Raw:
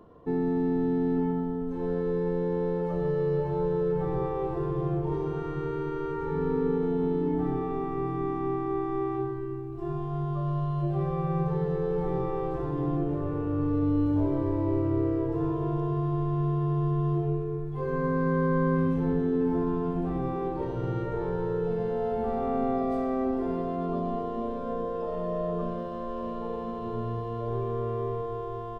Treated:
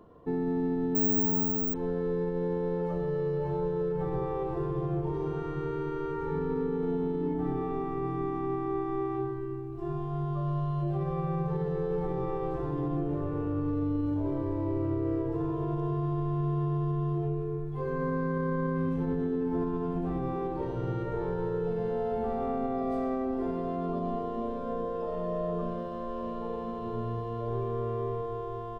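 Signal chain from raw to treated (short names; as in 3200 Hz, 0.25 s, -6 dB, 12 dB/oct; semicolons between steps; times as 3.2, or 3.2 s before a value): limiter -21 dBFS, peak gain reduction 6 dB; 0.95–1.74 careless resampling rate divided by 2×, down filtered, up zero stuff; gain -1.5 dB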